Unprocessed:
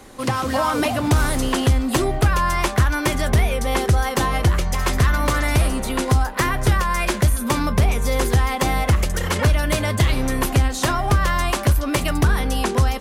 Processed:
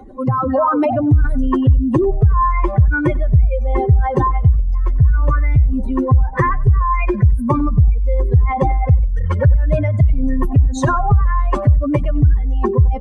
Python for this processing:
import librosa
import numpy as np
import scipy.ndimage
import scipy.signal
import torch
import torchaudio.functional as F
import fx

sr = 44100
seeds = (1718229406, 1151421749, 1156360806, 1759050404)

p1 = fx.spec_expand(x, sr, power=2.7)
p2 = p1 + fx.echo_feedback(p1, sr, ms=95, feedback_pct=16, wet_db=-21, dry=0)
y = p2 * librosa.db_to_amplitude(5.5)